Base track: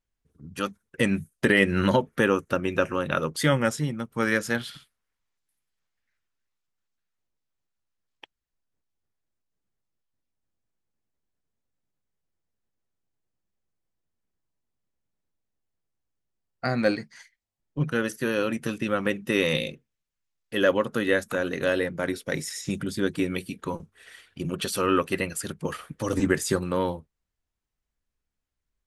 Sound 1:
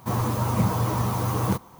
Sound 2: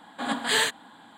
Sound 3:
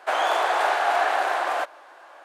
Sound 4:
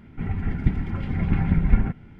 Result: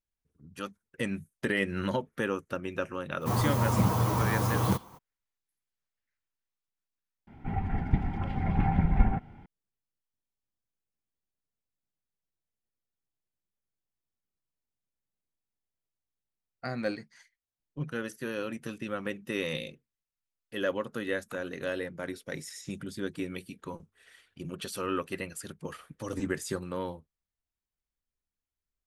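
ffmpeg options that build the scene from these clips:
ffmpeg -i bed.wav -i cue0.wav -i cue1.wav -i cue2.wav -i cue3.wav -filter_complex "[0:a]volume=-9dB[link_01];[4:a]equalizer=frequency=790:width_type=o:width=0.51:gain=14[link_02];[1:a]atrim=end=1.79,asetpts=PTS-STARTPTS,volume=-2.5dB,afade=type=in:duration=0.02,afade=type=out:start_time=1.77:duration=0.02,adelay=3200[link_03];[link_02]atrim=end=2.19,asetpts=PTS-STARTPTS,volume=-5dB,afade=type=in:duration=0.004:curve=hsin,afade=type=out:start_time=2.186:duration=0.004:curve=hsin,adelay=7270[link_04];[link_01][link_03][link_04]amix=inputs=3:normalize=0" out.wav

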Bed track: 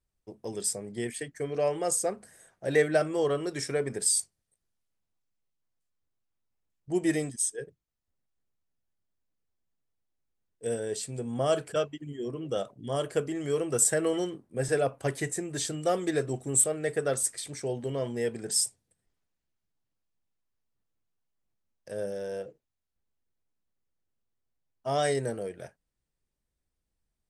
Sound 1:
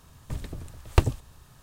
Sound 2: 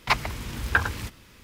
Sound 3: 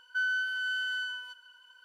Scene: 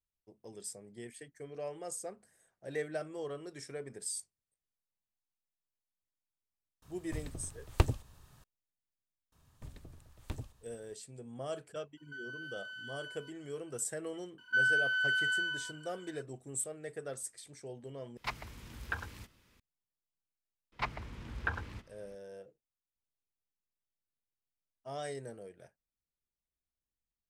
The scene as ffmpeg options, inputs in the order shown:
ffmpeg -i bed.wav -i cue0.wav -i cue1.wav -i cue2.wav -filter_complex "[1:a]asplit=2[link_01][link_02];[3:a]asplit=2[link_03][link_04];[2:a]asplit=2[link_05][link_06];[0:a]volume=-13.5dB[link_07];[link_02]asoftclip=type=tanh:threshold=-16dB[link_08];[link_03]alimiter=level_in=7dB:limit=-24dB:level=0:latency=1:release=71,volume=-7dB[link_09];[link_04]equalizer=frequency=1800:width_type=o:width=1.3:gain=6[link_10];[link_06]aemphasis=mode=reproduction:type=75fm[link_11];[link_07]asplit=2[link_12][link_13];[link_12]atrim=end=18.174[link_14];[link_05]atrim=end=1.43,asetpts=PTS-STARTPTS,volume=-15.5dB[link_15];[link_13]atrim=start=19.596[link_16];[link_01]atrim=end=1.62,asetpts=PTS-STARTPTS,volume=-7dB,afade=type=in:duration=0.004:curve=hsin,afade=type=out:start_time=1.616:duration=0.004:curve=hsin,adelay=300762S[link_17];[link_08]atrim=end=1.62,asetpts=PTS-STARTPTS,volume=-14.5dB,afade=type=in:duration=0.004:curve=hsin,afade=type=out:start_time=1.616:duration=0.004:curve=hsin,adelay=9320[link_18];[link_09]atrim=end=1.84,asetpts=PTS-STARTPTS,volume=-10dB,afade=type=in:duration=0.004:curve=hsin,afade=type=out:start_time=1.836:duration=0.004:curve=hsin,adelay=11970[link_19];[link_10]atrim=end=1.84,asetpts=PTS-STARTPTS,volume=-3.5dB,afade=type=in:duration=0.004:curve=hsin,afade=type=out:start_time=1.836:duration=0.004:curve=hsin,adelay=14380[link_20];[link_11]atrim=end=1.43,asetpts=PTS-STARTPTS,volume=-12dB,afade=type=in:duration=0.004:curve=hsin,afade=type=out:start_time=1.426:duration=0.004:curve=hsin,adelay=20720[link_21];[link_14][link_15]acrossfade=duration=0.004:curve1=hsin:curve2=hsin[link_22];[link_22][link_16]acrossfade=duration=0.004:curve1=hsin:curve2=hsin[link_23];[link_23][link_17][link_18][link_19][link_20][link_21]amix=inputs=6:normalize=0" out.wav

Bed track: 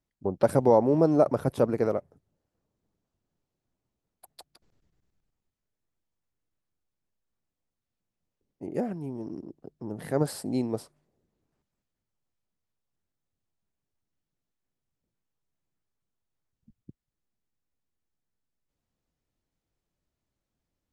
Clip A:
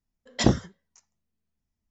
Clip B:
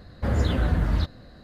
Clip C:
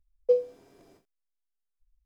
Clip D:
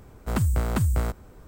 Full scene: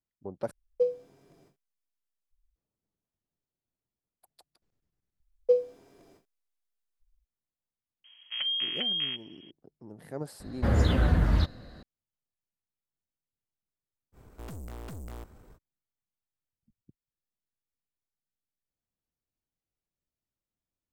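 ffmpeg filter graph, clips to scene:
ffmpeg -i bed.wav -i cue0.wav -i cue1.wav -i cue2.wav -i cue3.wav -filter_complex "[3:a]asplit=2[link_01][link_02];[4:a]asplit=2[link_03][link_04];[0:a]volume=-11dB[link_05];[link_01]equalizer=frequency=150:width_type=o:width=0.56:gain=10[link_06];[link_03]lowpass=frequency=2800:width_type=q:width=0.5098,lowpass=frequency=2800:width_type=q:width=0.6013,lowpass=frequency=2800:width_type=q:width=0.9,lowpass=frequency=2800:width_type=q:width=2.563,afreqshift=-3300[link_07];[link_04]aeval=exprs='(tanh(63.1*val(0)+0.45)-tanh(0.45))/63.1':channel_layout=same[link_08];[link_05]asplit=3[link_09][link_10][link_11];[link_09]atrim=end=0.514[link_12];[link_06]atrim=end=2.05,asetpts=PTS-STARTPTS,volume=-4dB[link_13];[link_10]atrim=start=2.556:end=5.204[link_14];[link_02]atrim=end=2.05,asetpts=PTS-STARTPTS,volume=-0.5dB[link_15];[link_11]atrim=start=7.246[link_16];[link_07]atrim=end=1.47,asetpts=PTS-STARTPTS,volume=-8.5dB,afade=type=in:duration=0.004:curve=hsin,afade=type=out:start_time=1.466:duration=0.004:curve=hsin,adelay=8040[link_17];[2:a]atrim=end=1.43,asetpts=PTS-STARTPTS,volume=-0.5dB,afade=type=in:duration=0.004:curve=hsin,afade=type=out:start_time=1.426:duration=0.004:curve=hsin,adelay=10400[link_18];[link_08]atrim=end=1.47,asetpts=PTS-STARTPTS,volume=-4.5dB,afade=type=in:duration=0.05,afade=type=out:start_time=1.42:duration=0.05,adelay=622692S[link_19];[link_12][link_13]acrossfade=duration=0.004:curve1=hsin:curve2=hsin[link_20];[link_20][link_14]acrossfade=duration=0.004:curve1=hsin:curve2=hsin[link_21];[link_21][link_15]acrossfade=duration=0.004:curve1=hsin:curve2=hsin[link_22];[link_22][link_16]acrossfade=duration=0.004:curve1=hsin:curve2=hsin[link_23];[link_23][link_17][link_18][link_19]amix=inputs=4:normalize=0" out.wav

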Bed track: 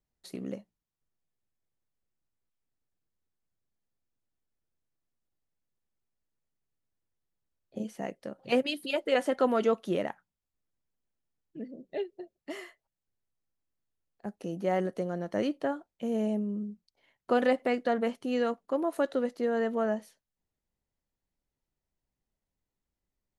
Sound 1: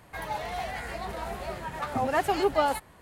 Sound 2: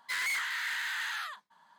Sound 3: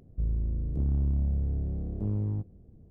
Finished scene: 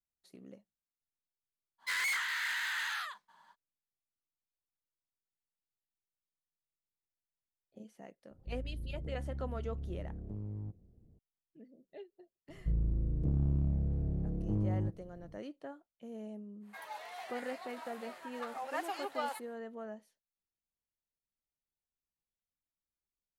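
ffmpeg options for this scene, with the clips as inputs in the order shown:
ffmpeg -i bed.wav -i cue0.wav -i cue1.wav -i cue2.wav -filter_complex "[3:a]asplit=2[link_01][link_02];[0:a]volume=-15.5dB[link_03];[2:a]equalizer=frequency=200:width=1.3:gain=-2.5[link_04];[link_01]acompressor=threshold=-28dB:ratio=6:attack=3.2:release=140:knee=1:detection=peak[link_05];[link_02]aecho=1:1:6.2:0.51[link_06];[1:a]highpass=700[link_07];[link_04]atrim=end=1.78,asetpts=PTS-STARTPTS,volume=-1dB,afade=type=in:duration=0.05,afade=type=out:start_time=1.73:duration=0.05,adelay=1780[link_08];[link_05]atrim=end=2.9,asetpts=PTS-STARTPTS,volume=-9.5dB,afade=type=in:duration=0.004:curve=hsin,afade=type=out:start_time=2.896:duration=0.004:curve=hsin,adelay=8290[link_09];[link_06]atrim=end=2.9,asetpts=PTS-STARTPTS,volume=-1.5dB,afade=type=in:duration=0.004:curve=hsin,afade=type=out:start_time=2.896:duration=0.004:curve=hsin,adelay=12480[link_10];[link_07]atrim=end=3.01,asetpts=PTS-STARTPTS,volume=-10dB,afade=type=in:duration=0.1,afade=type=out:start_time=2.91:duration=0.1,adelay=16600[link_11];[link_03][link_08][link_09][link_10][link_11]amix=inputs=5:normalize=0" out.wav

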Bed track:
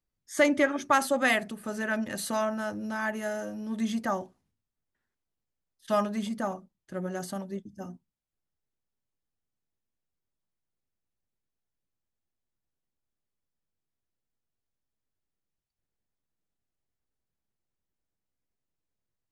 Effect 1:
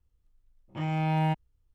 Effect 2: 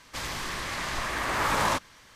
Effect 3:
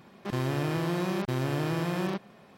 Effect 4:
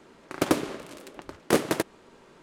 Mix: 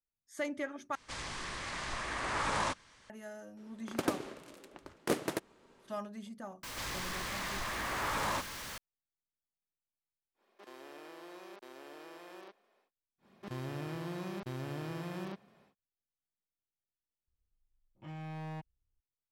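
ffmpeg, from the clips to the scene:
ffmpeg -i bed.wav -i cue0.wav -i cue1.wav -i cue2.wav -i cue3.wav -filter_complex "[2:a]asplit=2[link_01][link_02];[3:a]asplit=2[link_03][link_04];[0:a]volume=-14dB[link_05];[link_01]aresample=22050,aresample=44100[link_06];[link_02]aeval=exprs='val(0)+0.5*0.0422*sgn(val(0))':channel_layout=same[link_07];[link_03]highpass=frequency=340:width=0.5412,highpass=frequency=340:width=1.3066[link_08];[1:a]volume=26.5dB,asoftclip=hard,volume=-26.5dB[link_09];[link_05]asplit=3[link_10][link_11][link_12];[link_10]atrim=end=0.954[link_13];[link_06]atrim=end=2.15,asetpts=PTS-STARTPTS,volume=-7.5dB[link_14];[link_11]atrim=start=3.096:end=17.274[link_15];[link_09]atrim=end=1.74,asetpts=PTS-STARTPTS,volume=-13.5dB[link_16];[link_12]atrim=start=19.006[link_17];[4:a]atrim=end=2.42,asetpts=PTS-STARTPTS,volume=-9.5dB,afade=type=in:duration=0.004:curve=hsin,afade=type=out:start_time=2.416:duration=0.004:curve=hsin,adelay=157437S[link_18];[link_07]atrim=end=2.15,asetpts=PTS-STARTPTS,volume=-11dB,afade=type=in:duration=0.004:curve=hsin,afade=type=out:start_time=2.146:duration=0.004:curve=hsin,adelay=6630[link_19];[link_08]atrim=end=2.57,asetpts=PTS-STARTPTS,volume=-17dB,afade=type=in:duration=0.1,afade=type=out:start_time=2.47:duration=0.1,adelay=455994S[link_20];[link_04]atrim=end=2.57,asetpts=PTS-STARTPTS,volume=-11dB,afade=type=in:duration=0.1,afade=type=out:start_time=2.47:duration=0.1,adelay=13180[link_21];[link_13][link_14]acrossfade=duration=0.004:curve1=hsin:curve2=hsin[link_22];[link_22][link_15]acrossfade=duration=0.004:curve1=hsin:curve2=hsin[link_23];[link_23][link_16]acrossfade=duration=0.004:curve1=hsin:curve2=hsin[link_24];[link_24][link_17]acrossfade=duration=0.004:curve1=hsin:curve2=hsin[link_25];[link_25][link_18][link_19][link_20][link_21]amix=inputs=5:normalize=0" out.wav

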